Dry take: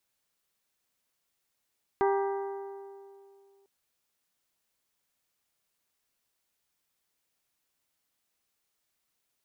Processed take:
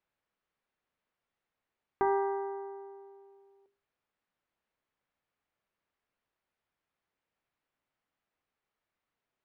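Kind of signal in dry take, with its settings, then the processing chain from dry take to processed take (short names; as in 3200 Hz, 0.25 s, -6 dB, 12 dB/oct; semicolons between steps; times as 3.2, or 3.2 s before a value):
metal hit bell, length 1.65 s, lowest mode 395 Hz, modes 6, decay 2.49 s, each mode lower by 4 dB, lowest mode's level -23 dB
LPF 2100 Hz 12 dB/oct; notches 50/100/150/200/250/300/350/400 Hz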